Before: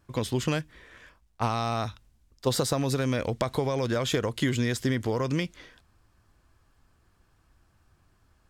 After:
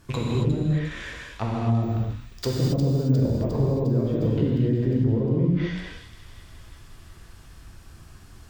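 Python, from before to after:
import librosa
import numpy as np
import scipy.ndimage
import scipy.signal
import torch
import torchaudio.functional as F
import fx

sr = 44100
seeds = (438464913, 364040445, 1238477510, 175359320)

p1 = fx.rattle_buzz(x, sr, strikes_db=-39.0, level_db=-36.0)
p2 = fx.hum_notches(p1, sr, base_hz=60, count=5)
p3 = fx.env_lowpass_down(p2, sr, base_hz=410.0, full_db=-26.0)
p4 = fx.peak_eq(p3, sr, hz=830.0, db=-6.0, octaves=2.6)
p5 = fx.over_compress(p4, sr, threshold_db=-41.0, ratio=-1.0)
p6 = p4 + F.gain(torch.from_numpy(p5), 2.0).numpy()
p7 = fx.rev_gated(p6, sr, seeds[0], gate_ms=300, shape='flat', drr_db=-4.0)
p8 = fx.resample_bad(p7, sr, factor=2, down='filtered', up='hold', at=(1.83, 3.2))
p9 = fx.echo_wet_highpass(p8, sr, ms=355, feedback_pct=64, hz=2800.0, wet_db=-9.0)
p10 = fx.band_squash(p9, sr, depth_pct=70, at=(4.22, 5.04))
y = F.gain(torch.from_numpy(p10), 1.5).numpy()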